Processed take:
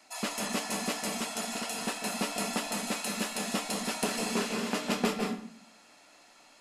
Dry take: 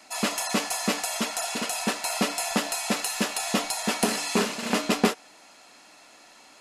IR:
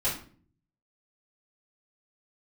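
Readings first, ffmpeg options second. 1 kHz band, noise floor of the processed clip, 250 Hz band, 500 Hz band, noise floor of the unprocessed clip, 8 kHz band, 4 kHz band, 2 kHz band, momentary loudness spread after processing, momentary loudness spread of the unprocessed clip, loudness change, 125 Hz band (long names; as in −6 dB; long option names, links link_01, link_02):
−5.5 dB, −59 dBFS, −5.0 dB, −5.0 dB, −53 dBFS, −6.0 dB, −6.0 dB, −5.5 dB, 4 LU, 3 LU, −6.0 dB, −5.0 dB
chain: -filter_complex "[0:a]asplit=2[link_01][link_02];[1:a]atrim=start_sample=2205,asetrate=37044,aresample=44100,adelay=148[link_03];[link_02][link_03]afir=irnorm=-1:irlink=0,volume=-12dB[link_04];[link_01][link_04]amix=inputs=2:normalize=0,volume=-7.5dB"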